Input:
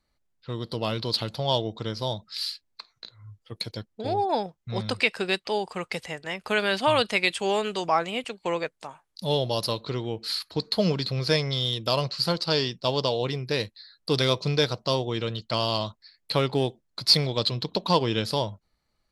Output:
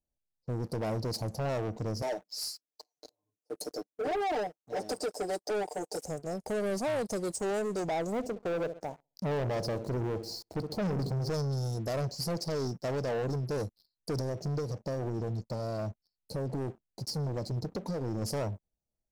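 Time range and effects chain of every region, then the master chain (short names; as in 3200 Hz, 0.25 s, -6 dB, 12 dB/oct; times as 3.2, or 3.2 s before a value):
2.02–6.05 HPF 280 Hz 24 dB/oct + comb 6.7 ms, depth 93%
8.12–11.34 air absorption 140 m + darkening echo 66 ms, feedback 45%, low-pass 1100 Hz, level -15.5 dB + sample leveller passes 1
14.19–18.22 high shelf 4800 Hz -7.5 dB + compressor 10:1, threshold -25 dBFS + cascading phaser rising 1.3 Hz
whole clip: elliptic band-stop 750–5800 Hz, stop band 40 dB; limiter -20.5 dBFS; sample leveller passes 3; gain -7 dB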